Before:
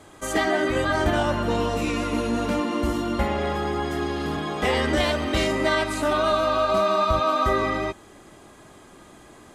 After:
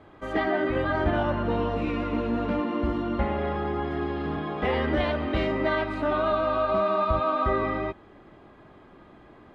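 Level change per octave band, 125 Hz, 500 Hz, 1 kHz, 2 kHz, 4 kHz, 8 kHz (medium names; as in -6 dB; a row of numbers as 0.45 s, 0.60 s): -1.5 dB, -2.5 dB, -3.5 dB, -5.0 dB, -10.0 dB, under -25 dB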